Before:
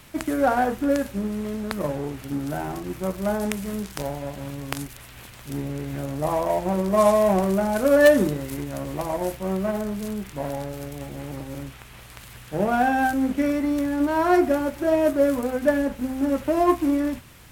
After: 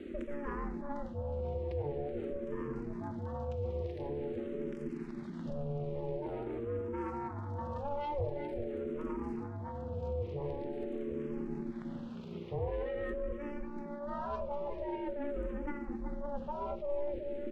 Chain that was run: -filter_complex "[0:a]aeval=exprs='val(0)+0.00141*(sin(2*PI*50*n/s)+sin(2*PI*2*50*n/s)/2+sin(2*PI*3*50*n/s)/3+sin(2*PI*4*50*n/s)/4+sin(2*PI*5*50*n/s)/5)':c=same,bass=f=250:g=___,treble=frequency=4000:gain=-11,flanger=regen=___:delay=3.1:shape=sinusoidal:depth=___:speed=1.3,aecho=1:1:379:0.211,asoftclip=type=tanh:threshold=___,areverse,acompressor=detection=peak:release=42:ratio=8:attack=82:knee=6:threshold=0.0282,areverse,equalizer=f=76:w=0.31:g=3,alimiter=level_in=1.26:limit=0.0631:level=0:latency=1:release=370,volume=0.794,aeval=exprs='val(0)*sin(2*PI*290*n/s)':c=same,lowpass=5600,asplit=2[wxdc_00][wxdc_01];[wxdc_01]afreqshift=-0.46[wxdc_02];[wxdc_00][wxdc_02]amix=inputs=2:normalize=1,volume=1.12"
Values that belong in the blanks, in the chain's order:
14, -28, 1.6, 0.188